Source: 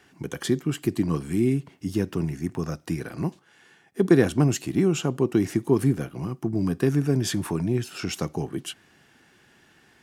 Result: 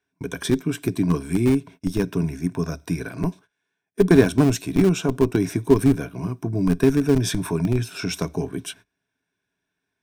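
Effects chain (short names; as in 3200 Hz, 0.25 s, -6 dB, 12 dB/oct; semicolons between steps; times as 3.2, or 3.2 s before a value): gate -45 dBFS, range -25 dB; ripple EQ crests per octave 1.6, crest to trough 10 dB; in parallel at -4 dB: Schmitt trigger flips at -15 dBFS; on the sum: gain +1.5 dB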